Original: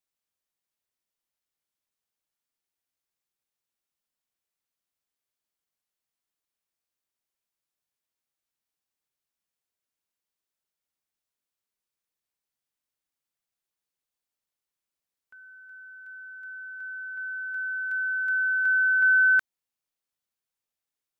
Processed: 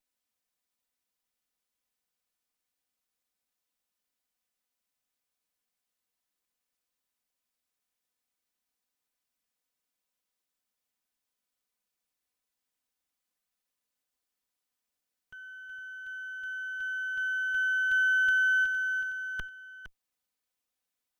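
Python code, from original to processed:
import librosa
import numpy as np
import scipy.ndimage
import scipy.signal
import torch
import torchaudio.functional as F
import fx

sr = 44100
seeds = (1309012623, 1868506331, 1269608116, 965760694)

y = fx.lower_of_two(x, sr, delay_ms=4.0)
y = fx.over_compress(y, sr, threshold_db=-26.0, ratio=-0.5)
y = y + 10.0 ** (-11.0 / 20.0) * np.pad(y, (int(461 * sr / 1000.0), 0))[:len(y)]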